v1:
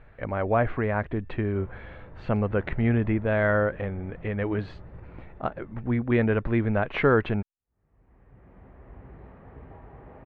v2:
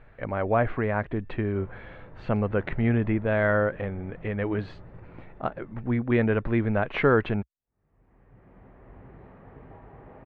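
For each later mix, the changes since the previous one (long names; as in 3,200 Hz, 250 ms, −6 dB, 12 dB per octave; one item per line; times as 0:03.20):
master: add parametric band 65 Hz −14 dB 0.33 octaves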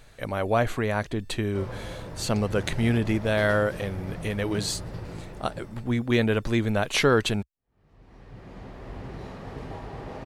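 background +10.0 dB
master: remove low-pass filter 2,200 Hz 24 dB per octave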